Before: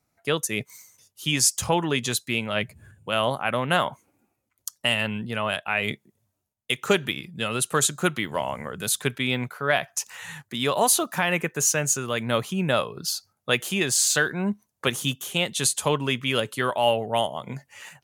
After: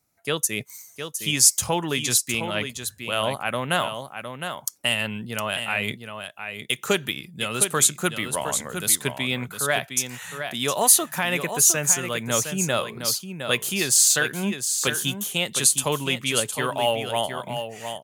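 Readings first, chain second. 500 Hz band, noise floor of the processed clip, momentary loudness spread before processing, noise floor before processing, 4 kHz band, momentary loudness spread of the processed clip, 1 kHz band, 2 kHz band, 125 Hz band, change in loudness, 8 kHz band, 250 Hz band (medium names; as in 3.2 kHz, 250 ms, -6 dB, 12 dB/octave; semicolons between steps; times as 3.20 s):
-1.0 dB, -49 dBFS, 11 LU, -77 dBFS, +1.5 dB, 15 LU, -1.0 dB, 0.0 dB, -1.5 dB, +2.0 dB, +5.5 dB, -1.5 dB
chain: treble shelf 5 kHz +9.5 dB; on a send: delay 711 ms -8 dB; on the sum: trim -2 dB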